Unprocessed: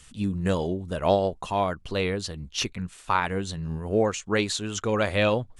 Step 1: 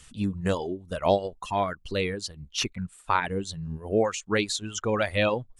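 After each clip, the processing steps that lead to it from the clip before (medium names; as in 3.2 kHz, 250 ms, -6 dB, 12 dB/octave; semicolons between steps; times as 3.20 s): reverb removal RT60 1.6 s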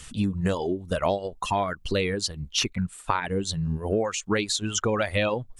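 compression 5:1, threshold -30 dBFS, peak gain reduction 13 dB; trim +8 dB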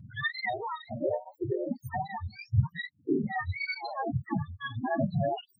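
spectrum inverted on a logarithmic axis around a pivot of 600 Hz; loudest bins only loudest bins 8; cancelling through-zero flanger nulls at 1.2 Hz, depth 2.4 ms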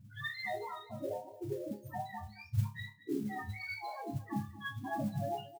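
chord resonator C#2 fifth, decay 0.28 s; modulation noise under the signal 24 dB; delay 226 ms -16 dB; trim +2.5 dB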